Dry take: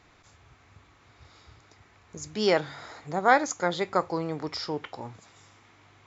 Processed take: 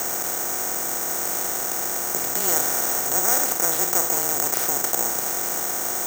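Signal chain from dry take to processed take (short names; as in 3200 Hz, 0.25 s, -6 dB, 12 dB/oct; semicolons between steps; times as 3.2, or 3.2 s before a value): per-bin compression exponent 0.2; careless resampling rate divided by 6×, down none, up zero stuff; frequency shift -26 Hz; gain -12.5 dB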